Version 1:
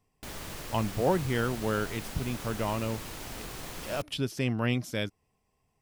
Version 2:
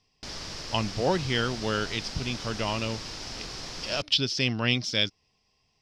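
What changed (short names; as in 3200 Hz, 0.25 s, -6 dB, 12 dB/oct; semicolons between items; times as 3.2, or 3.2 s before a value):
speech: add bell 3400 Hz +9.5 dB 1.3 oct; master: add synth low-pass 5200 Hz, resonance Q 4.7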